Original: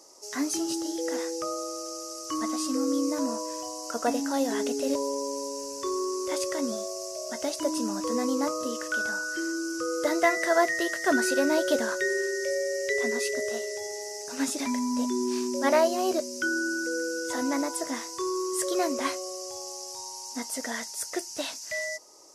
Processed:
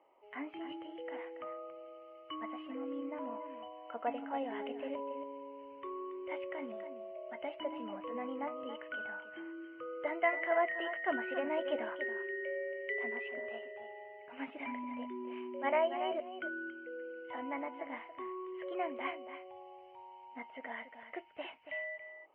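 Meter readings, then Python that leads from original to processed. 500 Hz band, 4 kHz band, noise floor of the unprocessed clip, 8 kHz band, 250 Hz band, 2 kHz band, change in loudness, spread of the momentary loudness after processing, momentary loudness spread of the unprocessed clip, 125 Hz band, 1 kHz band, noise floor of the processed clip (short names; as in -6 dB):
-10.0 dB, -17.0 dB, -40 dBFS, under -40 dB, -14.5 dB, -10.0 dB, -11.0 dB, 14 LU, 11 LU, n/a, -7.5 dB, -55 dBFS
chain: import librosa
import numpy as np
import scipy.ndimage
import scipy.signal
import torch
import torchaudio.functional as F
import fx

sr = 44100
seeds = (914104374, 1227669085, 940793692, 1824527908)

p1 = scipy.signal.sosfilt(scipy.signal.cheby1(6, 9, 3100.0, 'lowpass', fs=sr, output='sos'), x)
p2 = fx.high_shelf(p1, sr, hz=2100.0, db=10.0)
p3 = p2 + fx.echo_single(p2, sr, ms=280, db=-10.5, dry=0)
y = p3 * 10.0 ** (-7.0 / 20.0)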